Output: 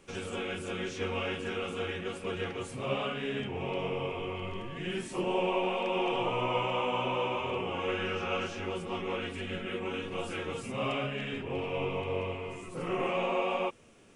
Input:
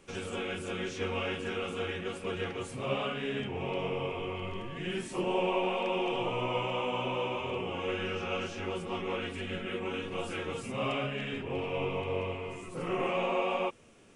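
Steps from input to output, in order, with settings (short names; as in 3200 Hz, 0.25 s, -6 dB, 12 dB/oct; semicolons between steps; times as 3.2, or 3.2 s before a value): 5.95–8.58 bell 1200 Hz +3.5 dB 1.9 oct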